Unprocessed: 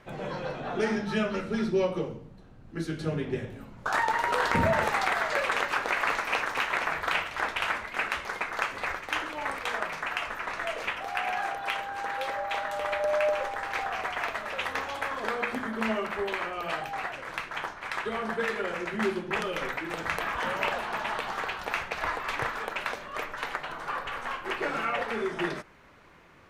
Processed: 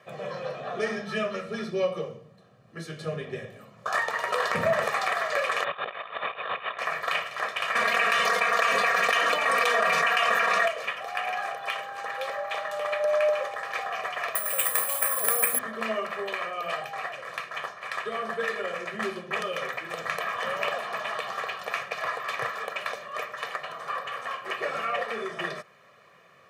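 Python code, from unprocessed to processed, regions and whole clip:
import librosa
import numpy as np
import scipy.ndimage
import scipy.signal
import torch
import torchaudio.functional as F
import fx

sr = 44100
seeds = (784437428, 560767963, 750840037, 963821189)

y = fx.chain(x, sr, fx.halfwave_hold(),
    fx.cheby_ripple(hz=3700.0, ripple_db=3),
    fx.over_compress(threshold_db=-33.0, ratio=-0.5), at=(5.64, 6.79))
y = fx.chain(y, sr, fx.comb(ms=4.3, depth=0.95),
    fx.env_flatten(amount_pct=100), at=(7.75, 10.68))
y = fx.chain(y, sr, fx.peak_eq(hz=7200.0, db=7.0, octaves=0.53),
    fx.resample_bad(factor=4, down='filtered', up='zero_stuff'), at=(14.35, 15.59))
y = scipy.signal.sosfilt(scipy.signal.butter(4, 120.0, 'highpass', fs=sr, output='sos'), y)
y = fx.low_shelf(y, sr, hz=180.0, db=-6.5)
y = y + 0.75 * np.pad(y, (int(1.7 * sr / 1000.0), 0))[:len(y)]
y = y * librosa.db_to_amplitude(-1.5)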